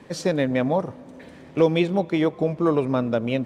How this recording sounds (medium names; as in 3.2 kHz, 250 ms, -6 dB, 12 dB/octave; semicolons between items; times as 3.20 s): noise floor -45 dBFS; spectral tilt -6.0 dB/octave